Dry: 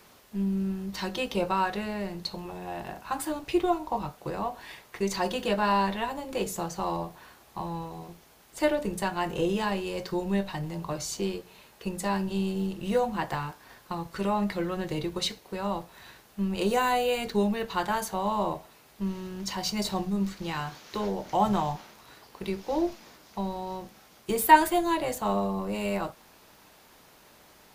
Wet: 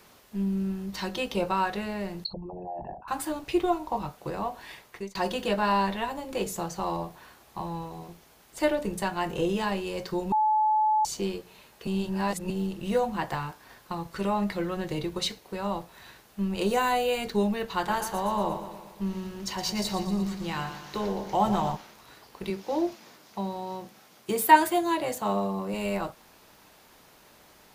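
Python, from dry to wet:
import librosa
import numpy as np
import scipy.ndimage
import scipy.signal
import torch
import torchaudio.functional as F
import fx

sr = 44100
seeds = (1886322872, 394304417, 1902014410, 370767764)

y = fx.envelope_sharpen(x, sr, power=3.0, at=(2.24, 3.08))
y = fx.echo_feedback(y, sr, ms=117, feedback_pct=58, wet_db=-10, at=(17.86, 21.75), fade=0.02)
y = fx.highpass(y, sr, hz=110.0, slope=12, at=(22.5, 25.74))
y = fx.edit(y, sr, fx.fade_out_span(start_s=4.72, length_s=0.43, curve='qsin'),
    fx.bleep(start_s=10.32, length_s=0.73, hz=861.0, db=-20.0),
    fx.reverse_span(start_s=11.87, length_s=0.63), tone=tone)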